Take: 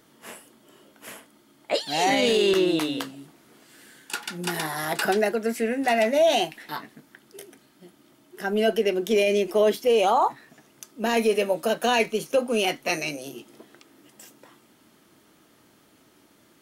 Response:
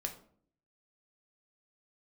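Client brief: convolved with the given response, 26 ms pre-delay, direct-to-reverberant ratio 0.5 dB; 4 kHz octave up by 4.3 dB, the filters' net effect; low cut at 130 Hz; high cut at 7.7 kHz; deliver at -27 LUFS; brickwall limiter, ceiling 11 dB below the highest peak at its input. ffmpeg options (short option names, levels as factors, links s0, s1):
-filter_complex "[0:a]highpass=130,lowpass=7700,equalizer=f=4000:t=o:g=6,alimiter=limit=0.119:level=0:latency=1,asplit=2[s0][s1];[1:a]atrim=start_sample=2205,adelay=26[s2];[s1][s2]afir=irnorm=-1:irlink=0,volume=0.944[s3];[s0][s3]amix=inputs=2:normalize=0,volume=0.841"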